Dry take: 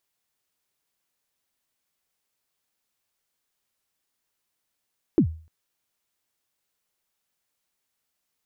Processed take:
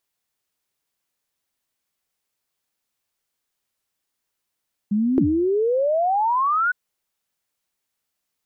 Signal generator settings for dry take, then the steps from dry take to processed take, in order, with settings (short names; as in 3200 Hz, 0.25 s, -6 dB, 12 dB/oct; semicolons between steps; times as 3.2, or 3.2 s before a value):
kick drum length 0.30 s, from 380 Hz, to 80 Hz, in 87 ms, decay 0.40 s, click off, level -11 dB
painted sound rise, 4.91–6.72, 200–1500 Hz -20 dBFS